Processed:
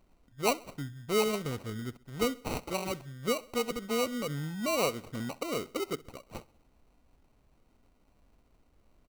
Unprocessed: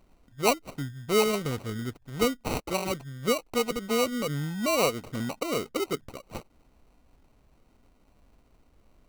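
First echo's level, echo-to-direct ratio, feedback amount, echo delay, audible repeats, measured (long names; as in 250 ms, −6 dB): −21.0 dB, −20.0 dB, 48%, 65 ms, 3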